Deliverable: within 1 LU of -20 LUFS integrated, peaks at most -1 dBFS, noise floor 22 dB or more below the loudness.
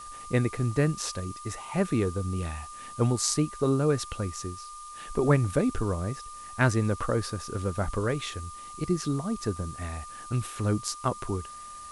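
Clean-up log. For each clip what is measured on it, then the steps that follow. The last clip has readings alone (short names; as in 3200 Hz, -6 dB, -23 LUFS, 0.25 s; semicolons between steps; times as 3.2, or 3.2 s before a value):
steady tone 1200 Hz; tone level -41 dBFS; noise floor -43 dBFS; noise floor target -51 dBFS; loudness -29.0 LUFS; peak -8.5 dBFS; loudness target -20.0 LUFS
-> notch 1200 Hz, Q 30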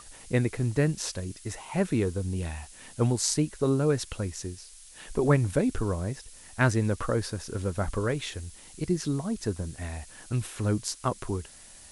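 steady tone none; noise floor -50 dBFS; noise floor target -51 dBFS
-> noise print and reduce 6 dB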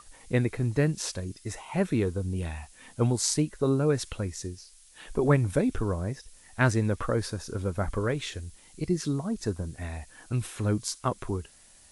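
noise floor -56 dBFS; loudness -29.0 LUFS; peak -8.5 dBFS; loudness target -20.0 LUFS
-> gain +9 dB; limiter -1 dBFS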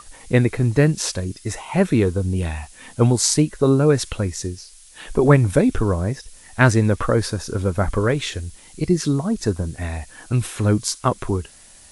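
loudness -20.5 LUFS; peak -1.0 dBFS; noise floor -47 dBFS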